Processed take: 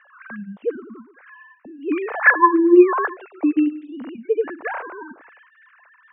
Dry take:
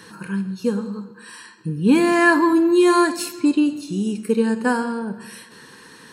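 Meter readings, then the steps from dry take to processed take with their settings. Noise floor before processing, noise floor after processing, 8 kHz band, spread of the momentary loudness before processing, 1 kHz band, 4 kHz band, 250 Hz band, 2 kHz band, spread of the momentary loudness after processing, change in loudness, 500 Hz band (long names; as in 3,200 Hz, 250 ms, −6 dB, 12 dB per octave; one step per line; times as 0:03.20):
−46 dBFS, −55 dBFS, below −40 dB, 16 LU, +1.5 dB, below −20 dB, −2.5 dB, +2.5 dB, 22 LU, +0.5 dB, +0.5 dB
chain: three sine waves on the formant tracks
three-way crossover with the lows and the highs turned down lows −12 dB, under 440 Hz, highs −22 dB, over 2,300 Hz
level +5 dB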